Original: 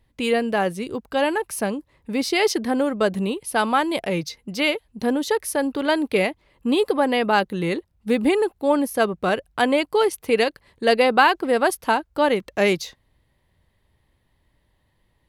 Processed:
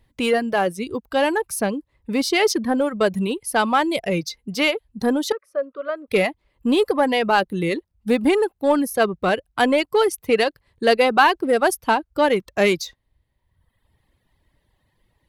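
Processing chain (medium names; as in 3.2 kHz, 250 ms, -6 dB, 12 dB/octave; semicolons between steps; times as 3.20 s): reverb removal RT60 1.1 s; in parallel at -8 dB: hard clipper -20 dBFS, distortion -8 dB; 5.32–6.08 s: on the sum: two resonant band-passes 840 Hz, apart 1.1 oct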